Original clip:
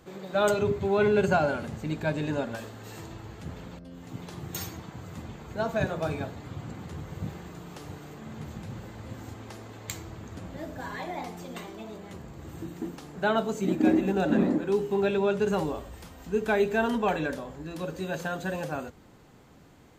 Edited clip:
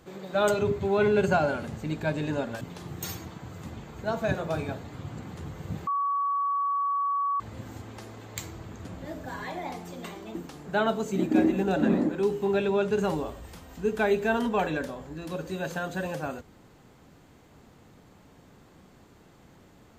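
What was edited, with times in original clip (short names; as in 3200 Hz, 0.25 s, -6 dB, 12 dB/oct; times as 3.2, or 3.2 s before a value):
2.61–4.13 cut
7.39–8.92 bleep 1130 Hz -24 dBFS
11.87–12.84 cut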